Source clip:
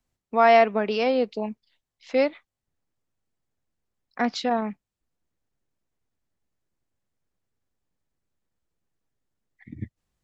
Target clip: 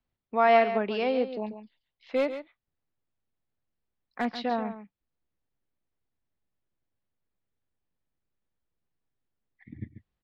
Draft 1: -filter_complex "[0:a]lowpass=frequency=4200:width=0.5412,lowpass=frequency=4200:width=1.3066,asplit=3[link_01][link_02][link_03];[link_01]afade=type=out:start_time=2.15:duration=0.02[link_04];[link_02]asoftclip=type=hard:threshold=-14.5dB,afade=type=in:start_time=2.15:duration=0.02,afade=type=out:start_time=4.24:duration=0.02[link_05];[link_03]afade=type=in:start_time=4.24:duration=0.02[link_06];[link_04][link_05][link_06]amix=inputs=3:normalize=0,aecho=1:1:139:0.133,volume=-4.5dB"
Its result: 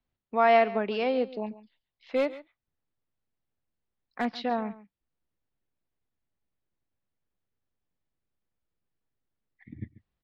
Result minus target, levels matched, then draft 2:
echo-to-direct −6.5 dB
-filter_complex "[0:a]lowpass=frequency=4200:width=0.5412,lowpass=frequency=4200:width=1.3066,asplit=3[link_01][link_02][link_03];[link_01]afade=type=out:start_time=2.15:duration=0.02[link_04];[link_02]asoftclip=type=hard:threshold=-14.5dB,afade=type=in:start_time=2.15:duration=0.02,afade=type=out:start_time=4.24:duration=0.02[link_05];[link_03]afade=type=in:start_time=4.24:duration=0.02[link_06];[link_04][link_05][link_06]amix=inputs=3:normalize=0,aecho=1:1:139:0.282,volume=-4.5dB"

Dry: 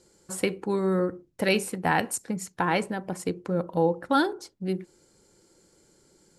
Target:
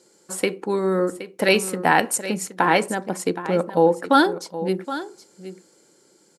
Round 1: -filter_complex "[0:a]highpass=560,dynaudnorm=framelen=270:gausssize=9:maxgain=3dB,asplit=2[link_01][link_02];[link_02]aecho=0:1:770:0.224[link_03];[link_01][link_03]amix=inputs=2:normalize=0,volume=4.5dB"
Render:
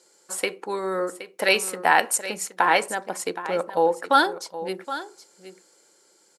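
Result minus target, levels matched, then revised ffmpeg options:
250 Hz band −7.5 dB
-filter_complex "[0:a]highpass=230,dynaudnorm=framelen=270:gausssize=9:maxgain=3dB,asplit=2[link_01][link_02];[link_02]aecho=0:1:770:0.224[link_03];[link_01][link_03]amix=inputs=2:normalize=0,volume=4.5dB"

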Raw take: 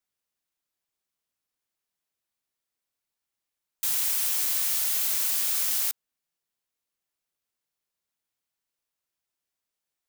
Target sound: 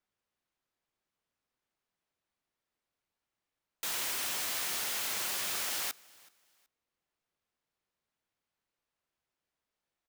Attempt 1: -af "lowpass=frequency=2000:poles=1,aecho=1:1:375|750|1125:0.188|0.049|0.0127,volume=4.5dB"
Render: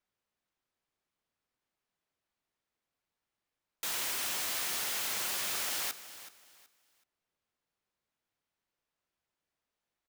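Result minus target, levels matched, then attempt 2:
echo-to-direct +10 dB
-af "lowpass=frequency=2000:poles=1,aecho=1:1:375|750:0.0596|0.0155,volume=4.5dB"

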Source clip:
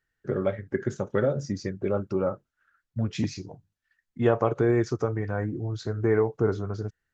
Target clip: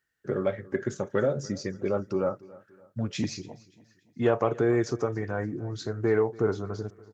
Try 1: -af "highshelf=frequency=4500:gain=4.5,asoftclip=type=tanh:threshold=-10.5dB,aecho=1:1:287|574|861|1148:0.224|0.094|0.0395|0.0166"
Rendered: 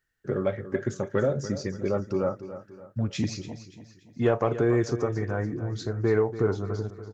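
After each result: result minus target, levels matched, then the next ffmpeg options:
echo-to-direct +8.5 dB; 125 Hz band +3.0 dB
-af "highshelf=frequency=4500:gain=4.5,asoftclip=type=tanh:threshold=-10.5dB,aecho=1:1:287|574|861:0.0841|0.0353|0.0148"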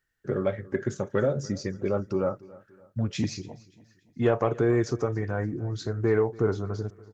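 125 Hz band +3.0 dB
-af "highpass=frequency=140:poles=1,highshelf=frequency=4500:gain=4.5,asoftclip=type=tanh:threshold=-10.5dB,aecho=1:1:287|574|861:0.0841|0.0353|0.0148"

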